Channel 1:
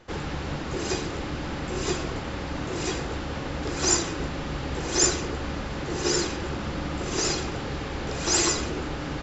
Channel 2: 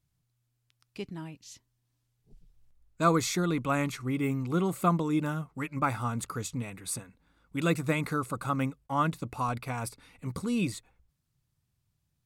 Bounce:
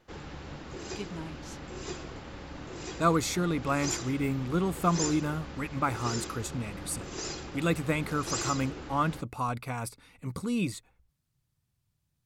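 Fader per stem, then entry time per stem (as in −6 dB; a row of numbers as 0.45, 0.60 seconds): −11.0, −0.5 decibels; 0.00, 0.00 seconds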